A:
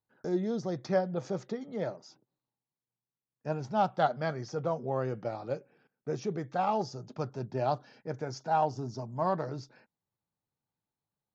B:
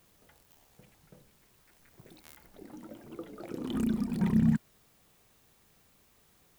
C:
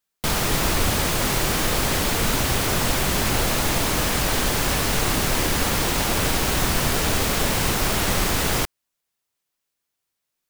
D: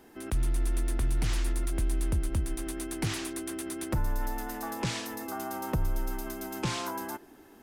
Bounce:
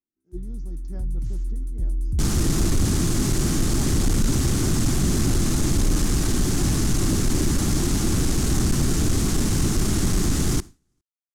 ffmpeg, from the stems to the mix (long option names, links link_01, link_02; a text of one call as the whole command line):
ffmpeg -i stem1.wav -i stem2.wav -i stem3.wav -i stem4.wav -filter_complex "[0:a]volume=-8dB[link_01];[1:a]adelay=700,volume=-16dB[link_02];[2:a]lowpass=8900,bandreject=frequency=960:width=12,adelay=1950,volume=1dB,asplit=2[link_03][link_04];[link_04]volume=-23dB[link_05];[3:a]asubboost=boost=6.5:cutoff=210,volume=-12dB[link_06];[link_05]aecho=0:1:408:1[link_07];[link_01][link_02][link_03][link_06][link_07]amix=inputs=5:normalize=0,agate=range=-33dB:threshold=-26dB:ratio=3:detection=peak,firequalizer=gain_entry='entry(340,0);entry(510,-19);entry(1000,-13);entry(2500,-17);entry(6400,-4)':delay=0.05:min_phase=1,aeval=exprs='0.335*(cos(1*acos(clip(val(0)/0.335,-1,1)))-cos(1*PI/2))+0.0531*(cos(5*acos(clip(val(0)/0.335,-1,1)))-cos(5*PI/2))':channel_layout=same" out.wav